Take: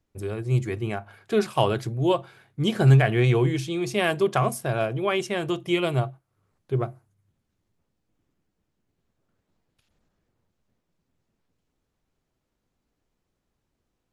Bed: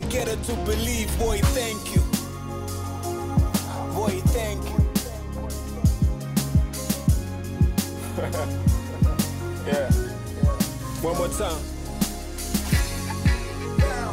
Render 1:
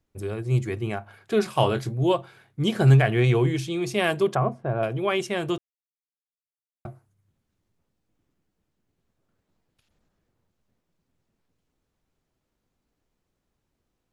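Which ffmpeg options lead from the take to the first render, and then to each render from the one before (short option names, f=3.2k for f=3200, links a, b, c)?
-filter_complex "[0:a]asettb=1/sr,asplit=3[a][b][c];[a]atrim=end=1.434[d];[b]atrim=start=1.43:end=2.04,asetpts=PTS-STARTPTS,afade=t=in:d=0.004:c=qsin,afade=t=out:st=0.606:d=0.004:c=qsin,asplit=2[e][f];[f]adelay=23,volume=-9dB[g];[e][g]amix=inputs=2:normalize=0,atrim=end_sample=26901[h];[c]atrim=start=2.036[i];[d][h]acrossfade=d=0.004:c1=hsin:c2=qsin[j];[j][i]acrossfade=d=0.004:c1=qsin:c2=hsin,asettb=1/sr,asplit=3[k][l][m];[k]atrim=end=4.354[n];[l]atrim=start=4.35:end=4.83,asetpts=PTS-STARTPTS,afade=t=in:d=0.004:c=qsin,afade=t=out:st=0.476:d=0.004:c=qsin,lowpass=1.2k[o];[m]atrim=start=4.826[p];[n][o]acrossfade=d=0.004:c1=hsin:c2=qsin[q];[q][p]acrossfade=d=0.004:c1=qsin:c2=hsin,asplit=3[r][s][t];[r]atrim=end=5.58,asetpts=PTS-STARTPTS,afade=t=out:st=5.576:d=0.004:c=hsin[u];[s]atrim=start=5.58:end=6.85,asetpts=PTS-STARTPTS,volume=0[v];[t]atrim=start=6.85,asetpts=PTS-STARTPTS,afade=t=in:d=0.004:c=hsin[w];[u][v][w]concat=n=3:v=0:a=1"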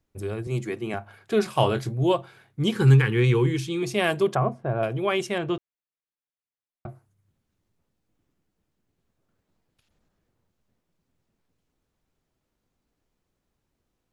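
-filter_complex "[0:a]asettb=1/sr,asplit=3[a][b][c];[a]atrim=end=0.474[d];[b]atrim=start=0.47:end=0.94,asetpts=PTS-STARTPTS,afade=t=in:d=0.004:c=qsin,afade=t=out:st=0.466:d=0.004:c=qsin,highpass=f=150:w=0.5412,highpass=f=150:w=1.3066[e];[c]atrim=start=0.936[f];[d][e]acrossfade=d=0.004:c1=hsin:c2=qsin[g];[g][f]acrossfade=d=0.004:c1=qsin:c2=hsin,asettb=1/sr,asplit=3[h][i][j];[h]atrim=end=2.714[k];[i]atrim=start=2.71:end=3.83,asetpts=PTS-STARTPTS,afade=t=in:d=0.004:c=qsin,afade=t=out:st=1.116:d=0.004:c=qsin,asuperstop=centerf=650:order=8:qfactor=2.2[l];[j]atrim=start=3.826[m];[k][l]acrossfade=d=0.004:c1=hsin:c2=qsin[n];[n][m]acrossfade=d=0.004:c1=qsin:c2=hsin,asettb=1/sr,asplit=3[o][p][q];[o]atrim=end=5.384[r];[p]atrim=start=5.38:end=6.89,asetpts=PTS-STARTPTS,afade=t=in:d=0.004:c=qsin,afade=t=out:st=1.506:d=0.004:c=qsin,lowpass=3.2k[s];[q]atrim=start=6.886[t];[r][s]acrossfade=d=0.004:c1=hsin:c2=qsin[u];[u][t]acrossfade=d=0.004:c1=qsin:c2=hsin"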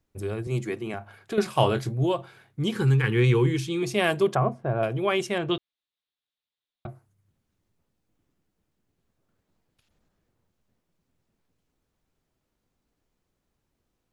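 -filter_complex "[0:a]asettb=1/sr,asplit=3[a][b][c];[a]atrim=end=0.784[d];[b]atrim=start=0.78:end=1.38,asetpts=PTS-STARTPTS,afade=t=in:d=0.004:c=qsin,afade=t=out:st=0.596:d=0.004:c=qsin,acompressor=threshold=-28dB:ratio=3:attack=3.2:release=140:knee=1:detection=peak[e];[c]atrim=start=1.376[f];[d][e]acrossfade=d=0.004:c1=hsin:c2=qsin[g];[g][f]acrossfade=d=0.004:c1=qsin:c2=hsin,asettb=1/sr,asplit=3[h][i][j];[h]atrim=end=2.054[k];[i]atrim=start=2.05:end=3.04,asetpts=PTS-STARTPTS,afade=t=in:d=0.004:c=qsin,afade=t=out:st=0.986:d=0.004:c=qsin,acompressor=threshold=-26dB:ratio=1.5:attack=3.2:release=140:knee=1:detection=peak[l];[j]atrim=start=3.036[m];[k][l]acrossfade=d=0.004:c1=hsin:c2=qsin[n];[n][m]acrossfade=d=0.004:c1=qsin:c2=hsin,asettb=1/sr,asplit=3[o][p][q];[o]atrim=end=5.514[r];[p]atrim=start=5.51:end=6.87,asetpts=PTS-STARTPTS,afade=t=in:d=0.004:c=qsin,afade=t=out:st=1.356:d=0.004:c=qsin,lowpass=f=3.7k:t=q:w=4.9[s];[q]atrim=start=6.866[t];[r][s]acrossfade=d=0.004:c1=hsin:c2=qsin[u];[u][t]acrossfade=d=0.004:c1=qsin:c2=hsin"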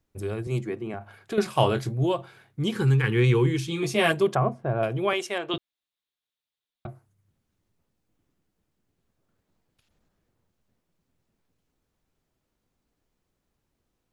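-filter_complex "[0:a]asplit=3[a][b][c];[a]afade=t=out:st=0.6:d=0.02[d];[b]highshelf=f=2.3k:g=-11.5,afade=t=in:st=0.6:d=0.02,afade=t=out:st=1:d=0.02[e];[c]afade=t=in:st=1:d=0.02[f];[d][e][f]amix=inputs=3:normalize=0,asettb=1/sr,asplit=3[g][h][i];[g]atrim=end=3.674[j];[h]atrim=start=3.67:end=4.12,asetpts=PTS-STARTPTS,afade=t=in:d=0.004:c=qsin,afade=t=out:st=0.446:d=0.004:c=qsin,asplit=2[k][l];[l]adelay=13,volume=-2dB[m];[k][m]amix=inputs=2:normalize=0,atrim=end_sample=19845[n];[i]atrim=start=4.116[o];[j][n]acrossfade=d=0.004:c1=hsin:c2=qsin[p];[p][o]acrossfade=d=0.004:c1=qsin:c2=hsin,asettb=1/sr,asplit=3[q][r][s];[q]atrim=end=5.134[t];[r]atrim=start=5.13:end=5.54,asetpts=PTS-STARTPTS,afade=t=in:d=0.004:c=qsin,afade=t=out:st=0.406:d=0.004:c=qsin,highpass=430[u];[s]atrim=start=5.536[v];[t][u]acrossfade=d=0.004:c1=hsin:c2=qsin[w];[w][v]acrossfade=d=0.004:c1=qsin:c2=hsin"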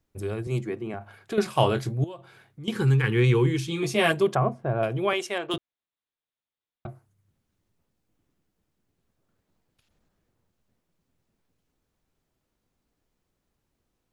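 -filter_complex "[0:a]asettb=1/sr,asplit=3[a][b][c];[a]atrim=end=2.044[d];[b]atrim=start=2.04:end=2.68,asetpts=PTS-STARTPTS,afade=t=in:d=0.004:c=qsin,afade=t=out:st=0.636:d=0.004:c=qsin,acompressor=threshold=-48dB:ratio=2:attack=3.2:release=140:knee=1:detection=peak[e];[c]atrim=start=2.676[f];[d][e]acrossfade=d=0.004:c1=hsin:c2=qsin[g];[g][f]acrossfade=d=0.004:c1=qsin:c2=hsin,asettb=1/sr,asplit=3[h][i][j];[h]atrim=end=5.474[k];[i]atrim=start=5.47:end=6.86,asetpts=PTS-STARTPTS,afade=t=in:d=0.004:c=qsin,afade=t=out:st=1.386:d=0.004:c=qsin,adynamicsmooth=sensitivity=5.5:basefreq=2.9k[l];[j]atrim=start=6.856[m];[k][l]acrossfade=d=0.004:c1=hsin:c2=qsin[n];[n][m]acrossfade=d=0.004:c1=qsin:c2=hsin"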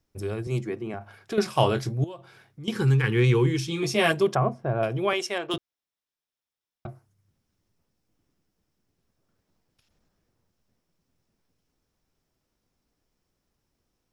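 -af "equalizer=f=5.4k:t=o:w=0.24:g=8.5"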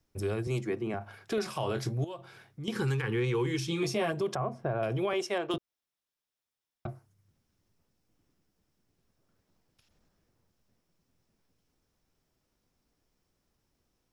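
-filter_complex "[0:a]acrossover=split=410|1200[a][b][c];[a]acompressor=threshold=-30dB:ratio=4[d];[b]acompressor=threshold=-25dB:ratio=4[e];[c]acompressor=threshold=-36dB:ratio=4[f];[d][e][f]amix=inputs=3:normalize=0,alimiter=limit=-21.5dB:level=0:latency=1:release=81"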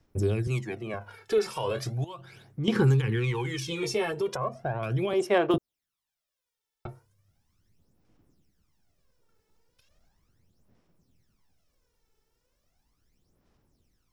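-af "aphaser=in_gain=1:out_gain=1:delay=2.3:decay=0.66:speed=0.37:type=sinusoidal"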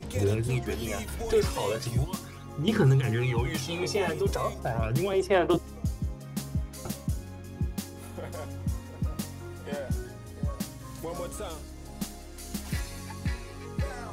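-filter_complex "[1:a]volume=-11dB[a];[0:a][a]amix=inputs=2:normalize=0"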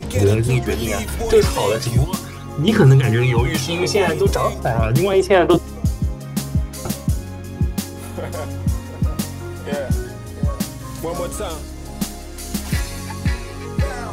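-af "volume=11dB,alimiter=limit=-3dB:level=0:latency=1"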